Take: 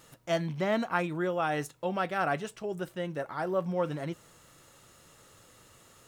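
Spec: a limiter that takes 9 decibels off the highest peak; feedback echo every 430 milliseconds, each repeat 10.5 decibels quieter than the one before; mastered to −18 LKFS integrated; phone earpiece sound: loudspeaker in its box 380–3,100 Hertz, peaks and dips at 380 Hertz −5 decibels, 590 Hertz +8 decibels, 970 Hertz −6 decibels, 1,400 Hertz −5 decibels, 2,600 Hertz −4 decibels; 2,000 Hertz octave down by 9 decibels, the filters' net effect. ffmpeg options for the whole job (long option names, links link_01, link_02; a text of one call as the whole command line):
ffmpeg -i in.wav -af "equalizer=frequency=2000:width_type=o:gain=-8,alimiter=level_in=2.5dB:limit=-24dB:level=0:latency=1,volume=-2.5dB,highpass=380,equalizer=frequency=380:width_type=q:width=4:gain=-5,equalizer=frequency=590:width_type=q:width=4:gain=8,equalizer=frequency=970:width_type=q:width=4:gain=-6,equalizer=frequency=1400:width_type=q:width=4:gain=-5,equalizer=frequency=2600:width_type=q:width=4:gain=-4,lowpass=frequency=3100:width=0.5412,lowpass=frequency=3100:width=1.3066,aecho=1:1:430|860|1290:0.299|0.0896|0.0269,volume=18dB" out.wav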